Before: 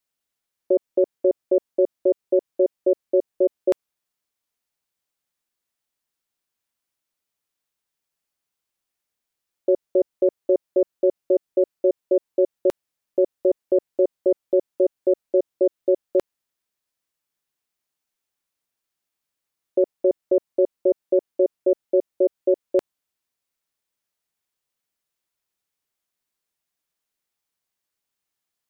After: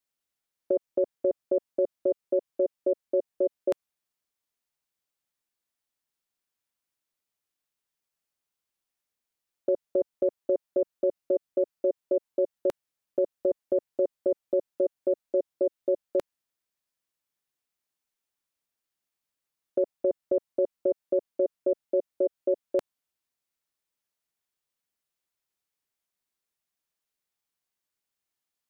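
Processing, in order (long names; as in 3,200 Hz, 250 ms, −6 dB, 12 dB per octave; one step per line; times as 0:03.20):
dynamic equaliser 360 Hz, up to −5 dB, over −29 dBFS, Q 2
level −4 dB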